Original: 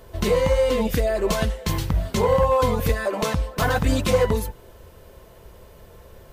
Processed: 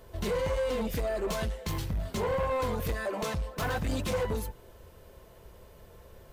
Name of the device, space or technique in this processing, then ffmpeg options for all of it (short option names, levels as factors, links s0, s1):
saturation between pre-emphasis and de-emphasis: -af "highshelf=f=5300:g=7.5,asoftclip=type=tanh:threshold=0.106,highshelf=f=5300:g=-7.5,volume=0.501"